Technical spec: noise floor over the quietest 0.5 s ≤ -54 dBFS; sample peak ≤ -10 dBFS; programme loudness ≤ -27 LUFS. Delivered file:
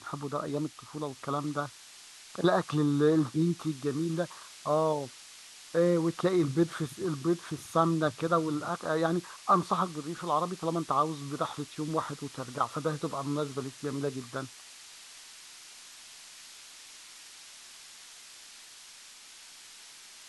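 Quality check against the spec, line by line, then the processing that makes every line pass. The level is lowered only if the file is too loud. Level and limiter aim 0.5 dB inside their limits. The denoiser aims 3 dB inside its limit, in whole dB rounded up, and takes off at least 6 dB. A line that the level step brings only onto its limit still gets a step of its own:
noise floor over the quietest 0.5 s -51 dBFS: fail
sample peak -12.0 dBFS: pass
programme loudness -31.0 LUFS: pass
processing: noise reduction 6 dB, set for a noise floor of -51 dBFS

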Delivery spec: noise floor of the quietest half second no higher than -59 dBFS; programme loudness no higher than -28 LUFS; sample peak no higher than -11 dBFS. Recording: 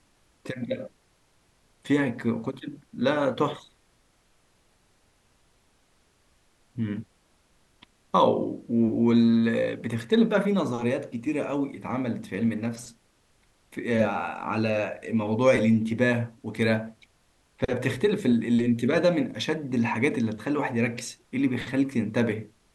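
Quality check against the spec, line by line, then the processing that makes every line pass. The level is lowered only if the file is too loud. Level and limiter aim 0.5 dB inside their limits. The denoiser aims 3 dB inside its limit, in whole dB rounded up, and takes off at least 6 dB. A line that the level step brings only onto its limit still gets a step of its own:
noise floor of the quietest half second -65 dBFS: pass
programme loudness -26.0 LUFS: fail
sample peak -8.0 dBFS: fail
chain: trim -2.5 dB; peak limiter -11.5 dBFS

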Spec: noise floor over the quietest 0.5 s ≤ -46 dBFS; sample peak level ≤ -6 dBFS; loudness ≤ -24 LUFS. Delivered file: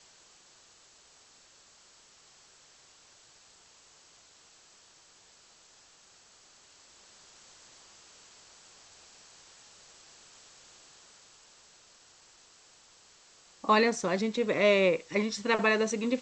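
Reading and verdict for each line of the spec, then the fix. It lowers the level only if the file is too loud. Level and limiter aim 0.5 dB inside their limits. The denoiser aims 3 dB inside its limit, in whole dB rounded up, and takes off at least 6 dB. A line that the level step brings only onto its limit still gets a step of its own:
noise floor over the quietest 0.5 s -59 dBFS: pass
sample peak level -11.0 dBFS: pass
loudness -27.0 LUFS: pass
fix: none needed

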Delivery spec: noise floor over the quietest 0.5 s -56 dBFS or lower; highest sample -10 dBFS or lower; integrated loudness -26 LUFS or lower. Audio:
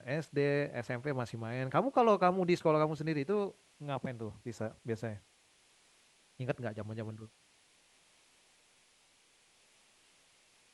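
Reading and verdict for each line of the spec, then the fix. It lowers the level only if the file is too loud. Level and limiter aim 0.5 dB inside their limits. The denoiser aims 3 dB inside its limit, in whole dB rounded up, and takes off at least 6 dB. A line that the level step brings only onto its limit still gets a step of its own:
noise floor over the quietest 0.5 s -68 dBFS: pass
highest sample -15.0 dBFS: pass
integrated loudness -34.0 LUFS: pass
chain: none needed

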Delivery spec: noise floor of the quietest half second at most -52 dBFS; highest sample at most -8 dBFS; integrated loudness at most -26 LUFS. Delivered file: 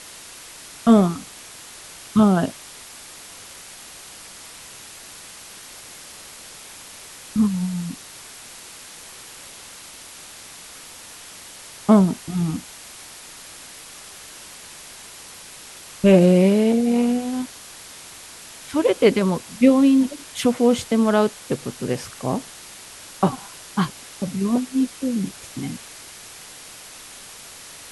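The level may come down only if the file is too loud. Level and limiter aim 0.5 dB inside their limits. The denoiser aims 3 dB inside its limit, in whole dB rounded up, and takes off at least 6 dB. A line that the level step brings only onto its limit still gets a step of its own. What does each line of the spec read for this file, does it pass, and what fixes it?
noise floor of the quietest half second -41 dBFS: fail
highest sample -3.0 dBFS: fail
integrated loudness -20.5 LUFS: fail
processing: noise reduction 8 dB, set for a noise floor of -41 dBFS; trim -6 dB

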